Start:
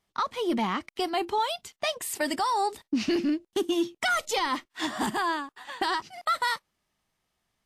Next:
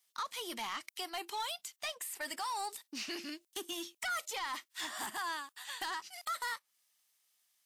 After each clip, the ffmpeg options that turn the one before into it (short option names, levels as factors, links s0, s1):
-filter_complex "[0:a]aderivative,acrossover=split=2200[s0][s1];[s1]acompressor=threshold=0.00398:ratio=10[s2];[s0][s2]amix=inputs=2:normalize=0,asoftclip=type=tanh:threshold=0.0106,volume=2.51"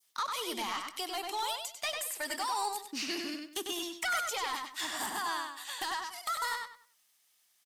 -filter_complex "[0:a]adynamicequalizer=threshold=0.002:dfrequency=1900:dqfactor=0.86:tfrequency=1900:tqfactor=0.86:attack=5:release=100:ratio=0.375:range=2.5:mode=cutabove:tftype=bell,asplit=2[s0][s1];[s1]adelay=97,lowpass=f=4900:p=1,volume=0.668,asplit=2[s2][s3];[s3]adelay=97,lowpass=f=4900:p=1,volume=0.27,asplit=2[s4][s5];[s5]adelay=97,lowpass=f=4900:p=1,volume=0.27,asplit=2[s6][s7];[s7]adelay=97,lowpass=f=4900:p=1,volume=0.27[s8];[s2][s4][s6][s8]amix=inputs=4:normalize=0[s9];[s0][s9]amix=inputs=2:normalize=0,volume=1.68"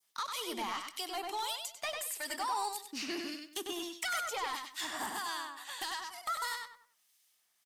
-filter_complex "[0:a]acrossover=split=2100[s0][s1];[s0]aeval=exprs='val(0)*(1-0.5/2+0.5/2*cos(2*PI*1.6*n/s))':c=same[s2];[s1]aeval=exprs='val(0)*(1-0.5/2-0.5/2*cos(2*PI*1.6*n/s))':c=same[s3];[s2][s3]amix=inputs=2:normalize=0"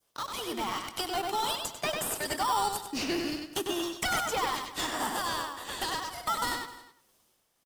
-filter_complex "[0:a]dynaudnorm=f=130:g=11:m=1.68,asplit=2[s0][s1];[s1]acrusher=samples=20:mix=1:aa=0.000001,volume=0.596[s2];[s0][s2]amix=inputs=2:normalize=0,aecho=1:1:258:0.119"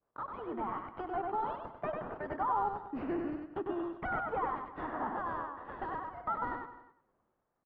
-af "lowpass=f=1500:w=0.5412,lowpass=f=1500:w=1.3066,volume=0.708"